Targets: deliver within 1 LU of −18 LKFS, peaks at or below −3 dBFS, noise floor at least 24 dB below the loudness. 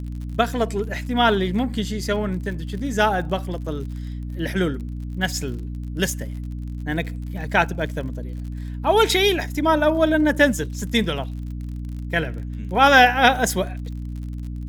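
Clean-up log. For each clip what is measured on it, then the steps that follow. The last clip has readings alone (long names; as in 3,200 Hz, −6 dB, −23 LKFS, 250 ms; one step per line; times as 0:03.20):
crackle rate 45 per second; mains hum 60 Hz; hum harmonics up to 300 Hz; level of the hum −27 dBFS; integrated loudness −21.5 LKFS; sample peak −1.5 dBFS; target loudness −18.0 LKFS
→ click removal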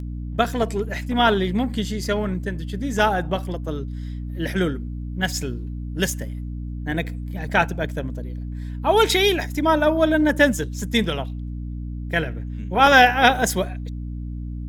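crackle rate 1.0 per second; mains hum 60 Hz; hum harmonics up to 300 Hz; level of the hum −27 dBFS
→ hum removal 60 Hz, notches 5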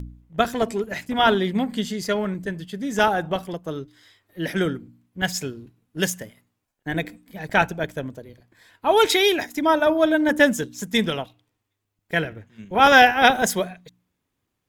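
mains hum none found; integrated loudness −21.5 LKFS; sample peak −1.5 dBFS; target loudness −18.0 LKFS
→ level +3.5 dB
brickwall limiter −3 dBFS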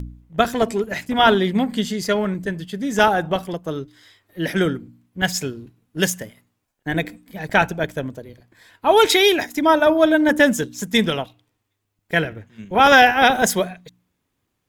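integrated loudness −18.5 LKFS; sample peak −3.0 dBFS; background noise floor −75 dBFS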